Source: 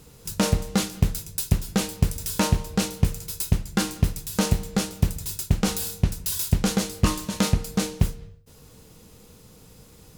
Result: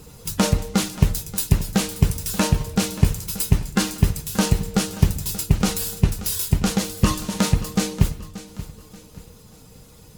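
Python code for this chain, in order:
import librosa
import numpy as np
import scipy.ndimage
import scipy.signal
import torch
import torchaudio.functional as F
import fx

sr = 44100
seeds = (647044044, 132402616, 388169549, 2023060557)

p1 = fx.spec_quant(x, sr, step_db=15)
p2 = fx.rider(p1, sr, range_db=5, speed_s=0.5)
p3 = p2 + fx.echo_feedback(p2, sr, ms=581, feedback_pct=39, wet_db=-15.5, dry=0)
y = p3 * 10.0 ** (3.5 / 20.0)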